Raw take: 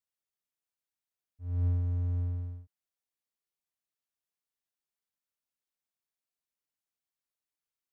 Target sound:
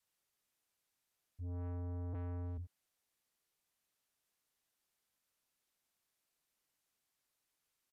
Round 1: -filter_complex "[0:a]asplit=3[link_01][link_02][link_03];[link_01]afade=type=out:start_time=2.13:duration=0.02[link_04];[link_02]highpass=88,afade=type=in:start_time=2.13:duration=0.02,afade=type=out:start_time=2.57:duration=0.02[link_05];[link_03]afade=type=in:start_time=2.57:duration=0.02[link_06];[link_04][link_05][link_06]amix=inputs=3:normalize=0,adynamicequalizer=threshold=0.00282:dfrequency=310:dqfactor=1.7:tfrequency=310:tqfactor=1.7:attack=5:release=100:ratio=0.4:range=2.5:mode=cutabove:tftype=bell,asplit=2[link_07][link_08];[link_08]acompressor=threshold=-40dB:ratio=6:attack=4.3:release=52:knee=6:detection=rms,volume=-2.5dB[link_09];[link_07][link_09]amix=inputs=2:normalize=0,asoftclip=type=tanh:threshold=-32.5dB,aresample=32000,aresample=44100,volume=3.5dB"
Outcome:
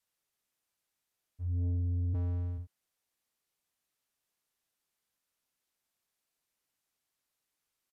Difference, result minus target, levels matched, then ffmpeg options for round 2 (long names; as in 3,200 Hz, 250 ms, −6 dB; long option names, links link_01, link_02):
soft clipping: distortion −5 dB
-filter_complex "[0:a]asplit=3[link_01][link_02][link_03];[link_01]afade=type=out:start_time=2.13:duration=0.02[link_04];[link_02]highpass=88,afade=type=in:start_time=2.13:duration=0.02,afade=type=out:start_time=2.57:duration=0.02[link_05];[link_03]afade=type=in:start_time=2.57:duration=0.02[link_06];[link_04][link_05][link_06]amix=inputs=3:normalize=0,adynamicequalizer=threshold=0.00282:dfrequency=310:dqfactor=1.7:tfrequency=310:tqfactor=1.7:attack=5:release=100:ratio=0.4:range=2.5:mode=cutabove:tftype=bell,asplit=2[link_07][link_08];[link_08]acompressor=threshold=-40dB:ratio=6:attack=4.3:release=52:knee=6:detection=rms,volume=-2.5dB[link_09];[link_07][link_09]amix=inputs=2:normalize=0,asoftclip=type=tanh:threshold=-44dB,aresample=32000,aresample=44100,volume=3.5dB"